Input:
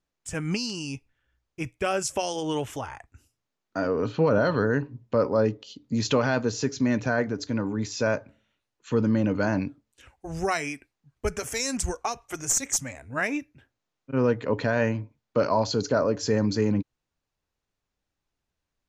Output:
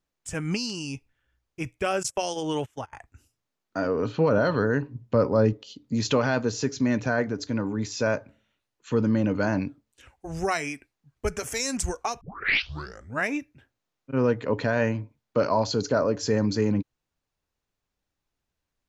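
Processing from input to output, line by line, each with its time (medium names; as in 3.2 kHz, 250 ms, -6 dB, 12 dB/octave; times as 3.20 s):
2.03–2.93 s: gate -33 dBFS, range -25 dB
4.95–5.53 s: peaking EQ 110 Hz +6 dB 2.2 oct
12.21 s: tape start 0.97 s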